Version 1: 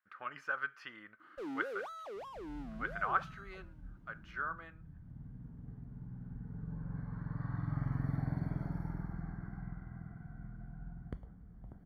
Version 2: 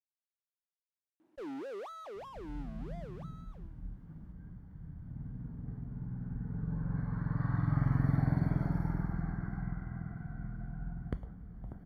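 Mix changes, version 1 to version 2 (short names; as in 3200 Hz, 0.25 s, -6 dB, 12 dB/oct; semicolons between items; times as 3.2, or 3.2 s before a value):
speech: muted; second sound +6.5 dB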